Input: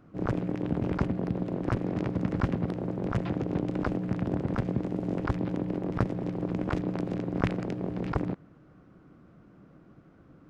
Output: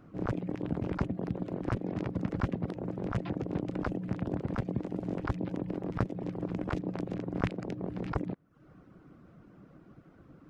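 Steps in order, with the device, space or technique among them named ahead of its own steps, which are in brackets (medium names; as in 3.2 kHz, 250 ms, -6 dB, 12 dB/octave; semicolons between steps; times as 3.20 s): reverb removal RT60 0.54 s; parallel compression (in parallel at -3 dB: compression, threshold -48 dBFS, peak gain reduction 25.5 dB); on the sum: trim -3.5 dB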